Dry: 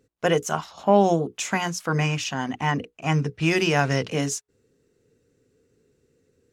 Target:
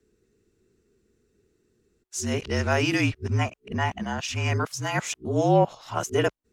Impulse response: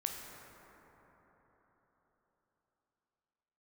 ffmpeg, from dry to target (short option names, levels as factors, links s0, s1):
-af "areverse,afreqshift=-46,volume=0.794"